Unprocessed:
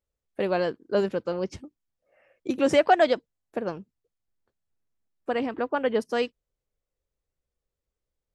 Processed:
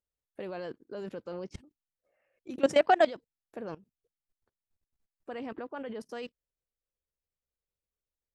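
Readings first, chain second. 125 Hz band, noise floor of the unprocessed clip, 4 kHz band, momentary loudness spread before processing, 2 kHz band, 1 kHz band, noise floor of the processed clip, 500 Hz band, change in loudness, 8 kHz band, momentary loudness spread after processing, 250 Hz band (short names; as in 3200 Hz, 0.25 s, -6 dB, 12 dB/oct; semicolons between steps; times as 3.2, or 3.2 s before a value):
-10.0 dB, under -85 dBFS, -6.5 dB, 17 LU, -6.0 dB, -4.5 dB, under -85 dBFS, -6.5 dB, -5.5 dB, -6.0 dB, 21 LU, -8.5 dB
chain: level quantiser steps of 19 dB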